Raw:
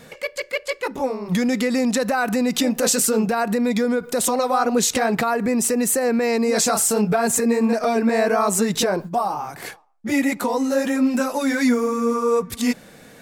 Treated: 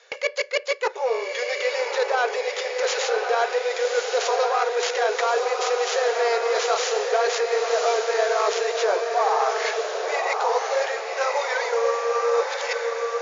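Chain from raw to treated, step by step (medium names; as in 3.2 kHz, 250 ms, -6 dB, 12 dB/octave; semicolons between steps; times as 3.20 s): tracing distortion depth 0.45 ms; reverse; compression 6:1, threshold -27 dBFS, peak gain reduction 12.5 dB; reverse; brick-wall FIR band-pass 380–7200 Hz; on a send: echo that smears into a reverb 1121 ms, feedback 46%, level -3 dB; on the sum: gate with hold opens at -37 dBFS; tape noise reduction on one side only encoder only; trim +7.5 dB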